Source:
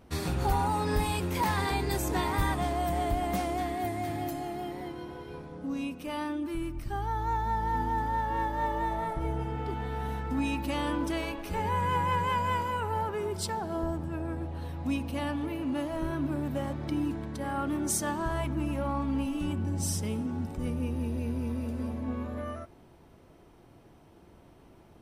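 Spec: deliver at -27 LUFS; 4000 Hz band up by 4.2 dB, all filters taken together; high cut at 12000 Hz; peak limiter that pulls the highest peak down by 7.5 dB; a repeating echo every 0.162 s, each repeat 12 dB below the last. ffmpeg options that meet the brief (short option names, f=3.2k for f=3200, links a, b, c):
-af "lowpass=12k,equalizer=f=4k:t=o:g=5.5,alimiter=limit=-23.5dB:level=0:latency=1,aecho=1:1:162|324|486:0.251|0.0628|0.0157,volume=6dB"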